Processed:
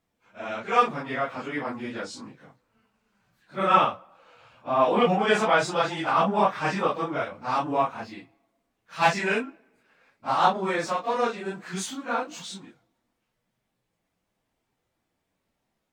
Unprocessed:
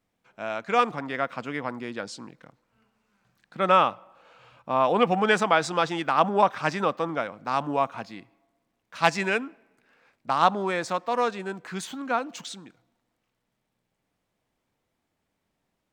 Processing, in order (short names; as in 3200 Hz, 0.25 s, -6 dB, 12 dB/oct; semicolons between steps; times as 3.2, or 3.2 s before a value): phase scrambler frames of 0.1 s; 11.52–12.06 dynamic EQ 6300 Hz, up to +6 dB, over -52 dBFS, Q 0.83